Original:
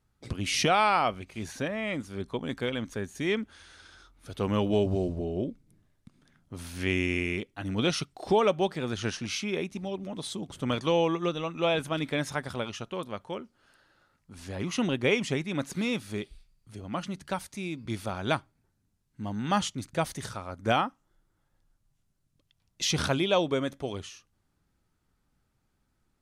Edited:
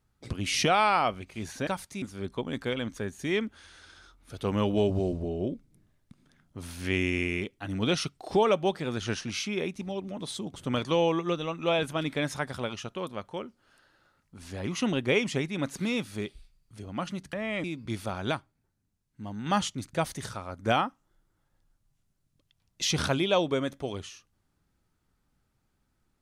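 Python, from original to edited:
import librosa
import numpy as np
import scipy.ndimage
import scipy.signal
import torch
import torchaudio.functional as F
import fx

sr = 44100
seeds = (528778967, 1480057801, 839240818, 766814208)

y = fx.edit(x, sr, fx.swap(start_s=1.67, length_s=0.31, other_s=17.29, other_length_s=0.35),
    fx.clip_gain(start_s=18.31, length_s=1.15, db=-4.0), tone=tone)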